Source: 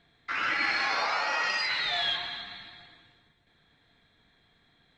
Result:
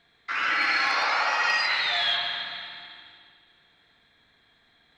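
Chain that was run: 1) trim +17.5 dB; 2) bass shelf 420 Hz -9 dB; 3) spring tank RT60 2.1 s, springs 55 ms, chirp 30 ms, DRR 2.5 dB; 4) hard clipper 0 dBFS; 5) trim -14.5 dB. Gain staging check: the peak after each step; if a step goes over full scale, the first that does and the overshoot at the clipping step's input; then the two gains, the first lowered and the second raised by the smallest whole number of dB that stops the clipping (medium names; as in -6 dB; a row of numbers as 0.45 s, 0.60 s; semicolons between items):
+1.0 dBFS, +1.0 dBFS, +3.0 dBFS, 0.0 dBFS, -14.5 dBFS; step 1, 3.0 dB; step 1 +14.5 dB, step 5 -11.5 dB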